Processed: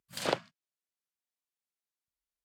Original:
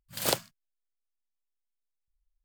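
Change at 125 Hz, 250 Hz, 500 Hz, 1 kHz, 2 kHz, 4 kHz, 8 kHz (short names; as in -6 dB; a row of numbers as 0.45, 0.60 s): -4.0, -0.5, 0.0, 0.0, -1.0, -5.5, -11.5 dB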